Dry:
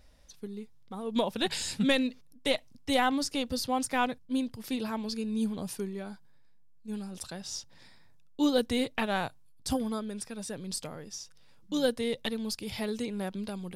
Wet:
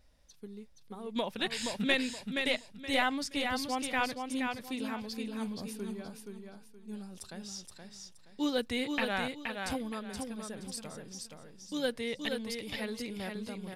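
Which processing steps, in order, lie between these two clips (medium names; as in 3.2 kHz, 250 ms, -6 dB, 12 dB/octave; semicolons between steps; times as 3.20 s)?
dynamic bell 2.1 kHz, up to +8 dB, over -48 dBFS, Q 1.1; feedback delay 473 ms, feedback 28%, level -5 dB; trim -6 dB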